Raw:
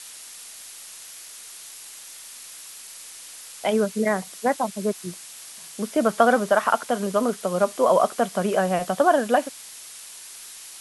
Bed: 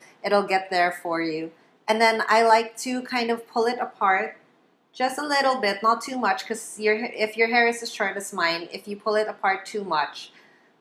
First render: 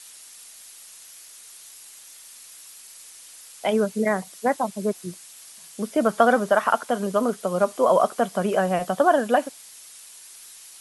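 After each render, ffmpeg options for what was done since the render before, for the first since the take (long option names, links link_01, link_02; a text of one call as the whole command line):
ffmpeg -i in.wav -af "afftdn=noise_reduction=6:noise_floor=-42" out.wav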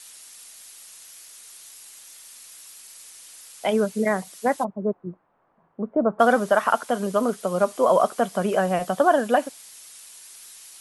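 ffmpeg -i in.wav -filter_complex "[0:a]asplit=3[link_01][link_02][link_03];[link_01]afade=type=out:start_time=4.63:duration=0.02[link_04];[link_02]lowpass=frequency=1100:width=0.5412,lowpass=frequency=1100:width=1.3066,afade=type=in:start_time=4.63:duration=0.02,afade=type=out:start_time=6.19:duration=0.02[link_05];[link_03]afade=type=in:start_time=6.19:duration=0.02[link_06];[link_04][link_05][link_06]amix=inputs=3:normalize=0" out.wav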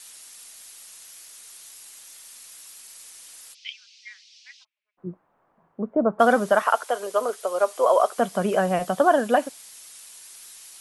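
ffmpeg -i in.wav -filter_complex "[0:a]asplit=3[link_01][link_02][link_03];[link_01]afade=type=out:start_time=3.53:duration=0.02[link_04];[link_02]asuperpass=centerf=3700:order=8:qfactor=1.1,afade=type=in:start_time=3.53:duration=0.02,afade=type=out:start_time=4.97:duration=0.02[link_05];[link_03]afade=type=in:start_time=4.97:duration=0.02[link_06];[link_04][link_05][link_06]amix=inputs=3:normalize=0,asettb=1/sr,asplit=3[link_07][link_08][link_09];[link_07]atrim=end=6.624[link_10];[link_08]atrim=start=6.62:end=8.18,asetpts=PTS-STARTPTS,afade=type=in:duration=0.004:curve=qsin,afade=type=out:start_time=1.556:duration=0.004:curve=qsin,highpass=frequency=400:width=0.5412,highpass=frequency=400:width=1.3066[link_11];[link_09]atrim=start=8.176[link_12];[link_10][link_11]acrossfade=duration=0.004:curve1=hsin:curve2=qsin[link_13];[link_13][link_12]acrossfade=duration=0.004:curve1=qsin:curve2=hsin" out.wav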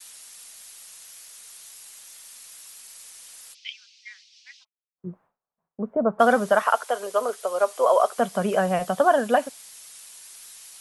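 ffmpeg -i in.wav -af "agate=range=-33dB:threshold=-49dB:ratio=3:detection=peak,equalizer=frequency=320:width_type=o:width=0.24:gain=-10" out.wav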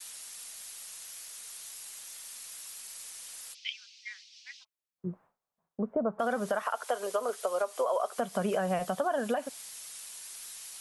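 ffmpeg -i in.wav -af "alimiter=limit=-15dB:level=0:latency=1:release=173,acompressor=threshold=-30dB:ratio=2" out.wav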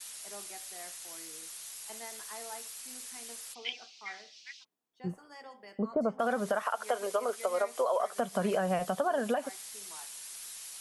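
ffmpeg -i in.wav -i bed.wav -filter_complex "[1:a]volume=-28.5dB[link_01];[0:a][link_01]amix=inputs=2:normalize=0" out.wav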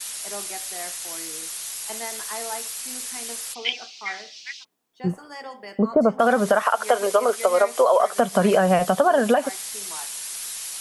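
ffmpeg -i in.wav -af "volume=12dB" out.wav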